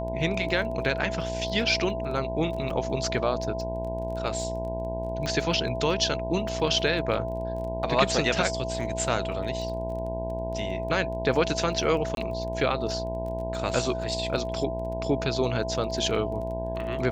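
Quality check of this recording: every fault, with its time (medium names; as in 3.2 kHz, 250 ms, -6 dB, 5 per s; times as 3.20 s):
buzz 60 Hz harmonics 17 -34 dBFS
crackle 17 per s -36 dBFS
whine 660 Hz -32 dBFS
2.70 s: dropout 3.6 ms
5.26 s: pop -17 dBFS
12.15–12.17 s: dropout 22 ms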